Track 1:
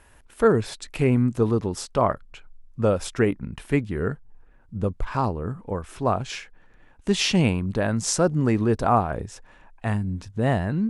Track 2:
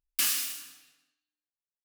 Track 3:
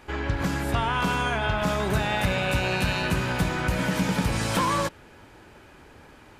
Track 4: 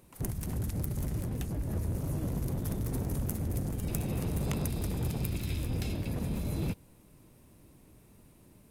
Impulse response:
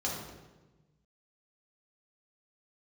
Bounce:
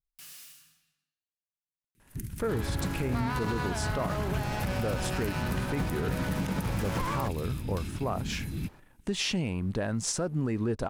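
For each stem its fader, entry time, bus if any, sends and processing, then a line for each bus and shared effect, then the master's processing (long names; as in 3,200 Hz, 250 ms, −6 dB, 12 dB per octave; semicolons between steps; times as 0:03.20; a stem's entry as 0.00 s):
−6.0 dB, 2.00 s, no send, downward compressor 4 to 1, threshold −23 dBFS, peak gain reduction 9.5 dB; leveller curve on the samples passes 1
−13.0 dB, 0.00 s, no send, low shelf with overshoot 220 Hz +9 dB, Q 3; brickwall limiter −21 dBFS, peak gain reduction 8 dB; soft clipping −30 dBFS, distortion −12 dB
−6.0 dB, 2.40 s, no send, windowed peak hold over 9 samples
0.0 dB, 1.95 s, no send, Chebyshev band-stop filter 290–1,800 Hz, order 2; expander for the loud parts 1.5 to 1, over −44 dBFS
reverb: not used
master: brickwall limiter −21 dBFS, peak gain reduction 7.5 dB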